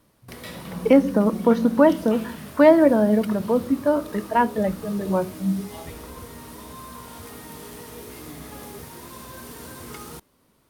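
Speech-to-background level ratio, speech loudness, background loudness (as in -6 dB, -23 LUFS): 19.0 dB, -20.0 LUFS, -39.0 LUFS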